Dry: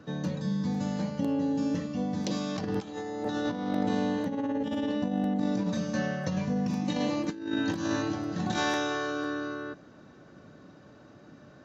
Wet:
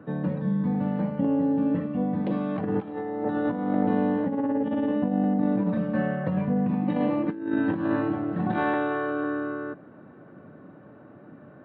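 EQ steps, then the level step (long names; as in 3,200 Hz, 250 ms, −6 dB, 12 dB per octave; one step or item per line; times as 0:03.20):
Gaussian smoothing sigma 4.1 samples
high-pass filter 110 Hz
+5.0 dB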